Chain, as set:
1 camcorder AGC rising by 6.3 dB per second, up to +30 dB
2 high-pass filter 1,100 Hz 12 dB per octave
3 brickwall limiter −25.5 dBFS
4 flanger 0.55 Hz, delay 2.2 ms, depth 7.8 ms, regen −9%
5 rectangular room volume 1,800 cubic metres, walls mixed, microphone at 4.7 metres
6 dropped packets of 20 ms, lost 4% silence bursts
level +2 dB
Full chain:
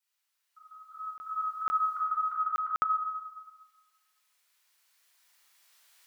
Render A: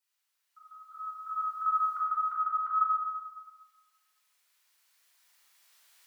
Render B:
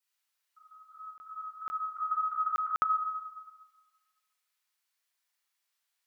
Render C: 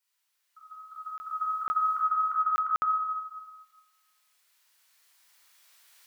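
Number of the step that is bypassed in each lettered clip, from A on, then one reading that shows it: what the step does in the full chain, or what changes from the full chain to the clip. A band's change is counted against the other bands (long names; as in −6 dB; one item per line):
6, change in momentary loudness spread +1 LU
1, change in crest factor +2.0 dB
4, change in crest factor −4.5 dB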